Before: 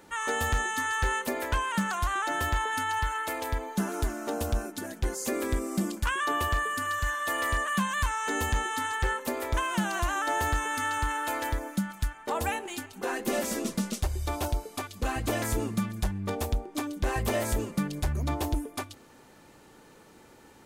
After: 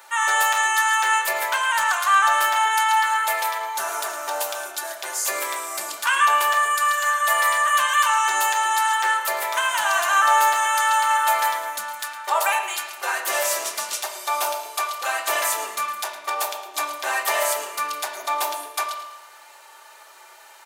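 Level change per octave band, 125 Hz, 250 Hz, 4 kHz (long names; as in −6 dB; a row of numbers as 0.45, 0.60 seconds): below −40 dB, below −15 dB, +10.5 dB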